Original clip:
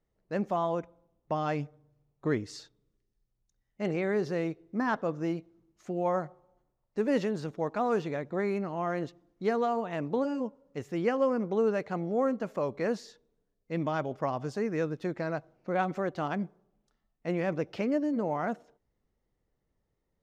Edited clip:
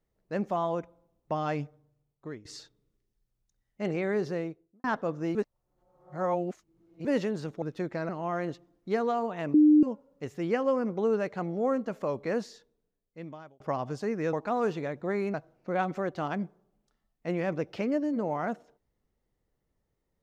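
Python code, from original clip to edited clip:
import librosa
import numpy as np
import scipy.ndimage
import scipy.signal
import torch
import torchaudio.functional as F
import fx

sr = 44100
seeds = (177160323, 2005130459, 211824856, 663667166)

y = fx.studio_fade_out(x, sr, start_s=4.23, length_s=0.61)
y = fx.edit(y, sr, fx.fade_out_to(start_s=1.62, length_s=0.83, floor_db=-19.0),
    fx.reverse_span(start_s=5.35, length_s=1.7),
    fx.swap(start_s=7.62, length_s=1.01, other_s=14.87, other_length_s=0.47),
    fx.bleep(start_s=10.08, length_s=0.29, hz=302.0, db=-15.0),
    fx.fade_out_span(start_s=12.98, length_s=1.16), tone=tone)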